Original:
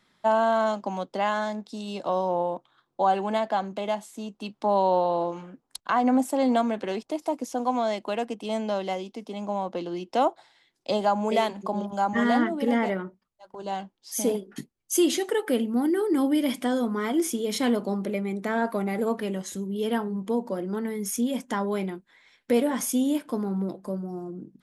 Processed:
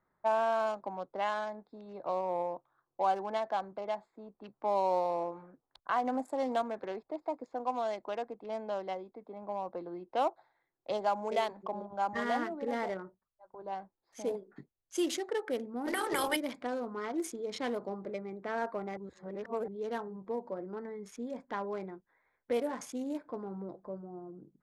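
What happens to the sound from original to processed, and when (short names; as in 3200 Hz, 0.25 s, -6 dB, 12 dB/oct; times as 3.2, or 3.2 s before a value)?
15.86–16.35 spectral limiter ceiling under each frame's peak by 27 dB
18.97–19.68 reverse
whole clip: Wiener smoothing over 15 samples; low-pass opened by the level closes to 1800 Hz, open at -19 dBFS; bell 220 Hz -10 dB 1 oct; gain -6 dB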